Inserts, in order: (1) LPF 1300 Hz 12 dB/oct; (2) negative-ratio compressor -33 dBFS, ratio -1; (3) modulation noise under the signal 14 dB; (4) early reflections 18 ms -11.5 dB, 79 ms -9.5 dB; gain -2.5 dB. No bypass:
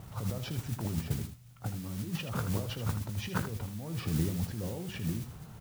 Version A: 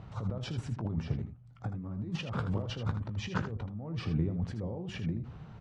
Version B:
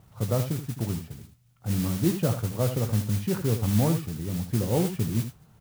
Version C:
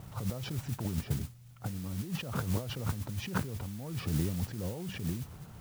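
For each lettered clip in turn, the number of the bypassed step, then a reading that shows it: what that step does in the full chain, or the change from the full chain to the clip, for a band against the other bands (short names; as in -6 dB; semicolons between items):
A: 3, 8 kHz band -11.5 dB; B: 2, crest factor change -2.5 dB; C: 4, echo-to-direct -7.5 dB to none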